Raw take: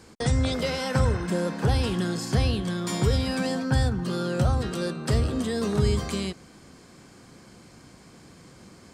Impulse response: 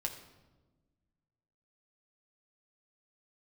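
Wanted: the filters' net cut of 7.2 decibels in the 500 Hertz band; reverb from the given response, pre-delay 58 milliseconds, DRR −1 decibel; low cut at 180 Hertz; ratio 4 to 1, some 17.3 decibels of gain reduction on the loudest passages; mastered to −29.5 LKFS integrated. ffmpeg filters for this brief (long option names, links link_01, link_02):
-filter_complex "[0:a]highpass=180,equalizer=frequency=500:width_type=o:gain=-8.5,acompressor=threshold=-46dB:ratio=4,asplit=2[link_01][link_02];[1:a]atrim=start_sample=2205,adelay=58[link_03];[link_02][link_03]afir=irnorm=-1:irlink=0,volume=0dB[link_04];[link_01][link_04]amix=inputs=2:normalize=0,volume=13.5dB"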